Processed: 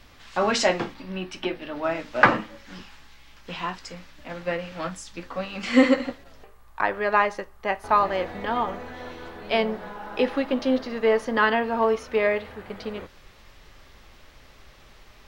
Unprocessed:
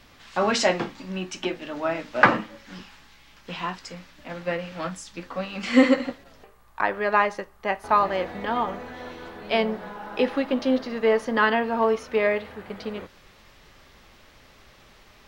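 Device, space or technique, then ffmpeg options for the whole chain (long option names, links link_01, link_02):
low shelf boost with a cut just above: -filter_complex "[0:a]asettb=1/sr,asplit=3[link_01][link_02][link_03];[link_01]atrim=end=0.944[link_04];[link_02]atrim=start=0.94:end=1.84,asetpts=PTS-STARTPTS,afade=type=in:duration=0.004:curve=qsin,afade=type=out:start_time=0.896:duration=0.004:curve=qsin,equalizer=frequency=6900:width_type=o:width=0.51:gain=-13[link_05];[link_03]atrim=start=1.836[link_06];[link_04][link_05]acrossfade=duration=0.004:curve1=hsin:curve2=qsin[link_07];[link_07][link_06]acrossfade=duration=0.004:curve1=qsin:curve2=hsin,lowshelf=frequency=66:gain=8,equalizer=frequency=190:width_type=o:width=0.77:gain=-2.5"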